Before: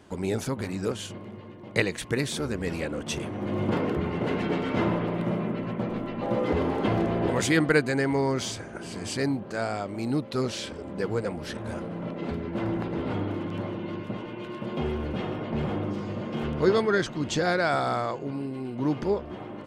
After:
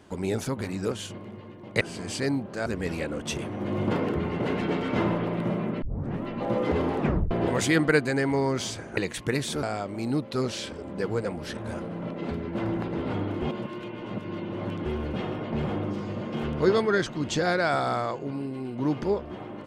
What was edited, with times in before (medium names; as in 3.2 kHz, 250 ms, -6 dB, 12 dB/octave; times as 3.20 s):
1.81–2.47 s: swap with 8.78–9.63 s
5.63 s: tape start 0.42 s
6.78 s: tape stop 0.34 s
13.42–14.86 s: reverse